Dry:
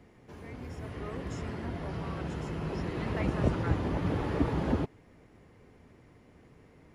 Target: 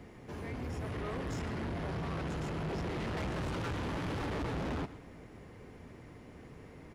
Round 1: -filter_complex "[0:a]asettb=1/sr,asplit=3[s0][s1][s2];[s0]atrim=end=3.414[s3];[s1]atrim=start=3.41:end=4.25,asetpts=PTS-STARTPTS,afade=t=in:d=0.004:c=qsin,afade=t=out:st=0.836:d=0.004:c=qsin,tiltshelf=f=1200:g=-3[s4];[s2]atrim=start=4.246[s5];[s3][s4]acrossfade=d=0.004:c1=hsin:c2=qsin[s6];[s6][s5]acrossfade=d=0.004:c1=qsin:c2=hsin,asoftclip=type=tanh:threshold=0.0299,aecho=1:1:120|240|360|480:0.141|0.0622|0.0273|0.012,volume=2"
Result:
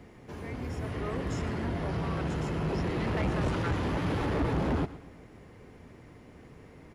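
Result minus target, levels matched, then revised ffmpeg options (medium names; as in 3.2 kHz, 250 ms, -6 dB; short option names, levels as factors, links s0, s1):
saturation: distortion -5 dB
-filter_complex "[0:a]asettb=1/sr,asplit=3[s0][s1][s2];[s0]atrim=end=3.414[s3];[s1]atrim=start=3.41:end=4.25,asetpts=PTS-STARTPTS,afade=t=in:d=0.004:c=qsin,afade=t=out:st=0.836:d=0.004:c=qsin,tiltshelf=f=1200:g=-3[s4];[s2]atrim=start=4.246[s5];[s3][s4]acrossfade=d=0.004:c1=hsin:c2=qsin[s6];[s6][s5]acrossfade=d=0.004:c1=qsin:c2=hsin,asoftclip=type=tanh:threshold=0.00944,aecho=1:1:120|240|360|480:0.141|0.0622|0.0273|0.012,volume=2"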